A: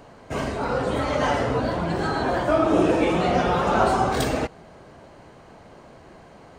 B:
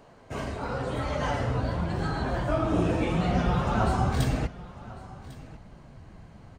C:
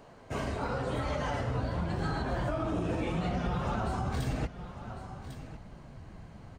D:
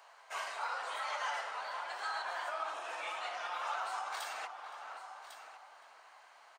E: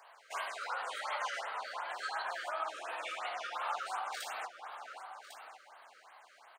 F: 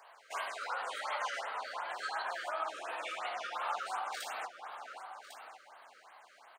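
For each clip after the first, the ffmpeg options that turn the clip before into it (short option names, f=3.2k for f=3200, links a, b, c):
-af "asubboost=boost=6:cutoff=170,flanger=delay=4.6:depth=6.7:regen=-57:speed=0.88:shape=triangular,aecho=1:1:1100:0.112,volume=-2.5dB"
-af "alimiter=limit=-23dB:level=0:latency=1:release=177"
-filter_complex "[0:a]highpass=f=840:w=0.5412,highpass=f=840:w=1.3066,asplit=2[a][b];[b]adelay=517,lowpass=f=1.4k:p=1,volume=-7dB,asplit=2[c][d];[d]adelay=517,lowpass=f=1.4k:p=1,volume=0.52,asplit=2[e][f];[f]adelay=517,lowpass=f=1.4k:p=1,volume=0.52,asplit=2[g][h];[h]adelay=517,lowpass=f=1.4k:p=1,volume=0.52,asplit=2[i][j];[j]adelay=517,lowpass=f=1.4k:p=1,volume=0.52,asplit=2[k][l];[l]adelay=517,lowpass=f=1.4k:p=1,volume=0.52[m];[a][c][e][g][i][k][m]amix=inputs=7:normalize=0,volume=1dB"
-af "afftfilt=real='re*(1-between(b*sr/1024,810*pow(7000/810,0.5+0.5*sin(2*PI*2.8*pts/sr))/1.41,810*pow(7000/810,0.5+0.5*sin(2*PI*2.8*pts/sr))*1.41))':imag='im*(1-between(b*sr/1024,810*pow(7000/810,0.5+0.5*sin(2*PI*2.8*pts/sr))/1.41,810*pow(7000/810,0.5+0.5*sin(2*PI*2.8*pts/sr))*1.41))':win_size=1024:overlap=0.75,volume=1.5dB"
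-af "lowshelf=f=240:g=9.5"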